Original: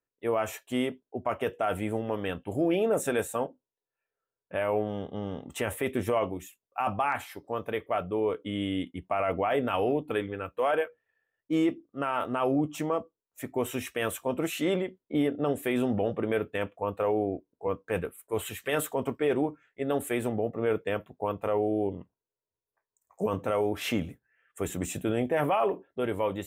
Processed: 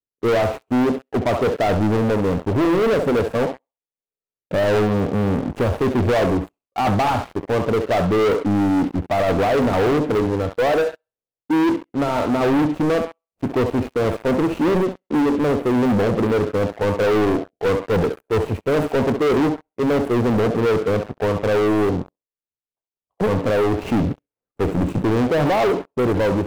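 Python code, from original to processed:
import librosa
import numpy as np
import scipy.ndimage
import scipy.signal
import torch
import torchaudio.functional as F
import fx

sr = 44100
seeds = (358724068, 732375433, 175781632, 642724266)

y = scipy.ndimage.median_filter(x, 25, mode='constant')
y = fx.tilt_shelf(y, sr, db=8.0, hz=1100.0)
y = fx.echo_thinned(y, sr, ms=67, feedback_pct=33, hz=630.0, wet_db=-8.0)
y = fx.rider(y, sr, range_db=10, speed_s=2.0)
y = fx.leveller(y, sr, passes=5)
y = F.gain(torch.from_numpy(y), -5.0).numpy()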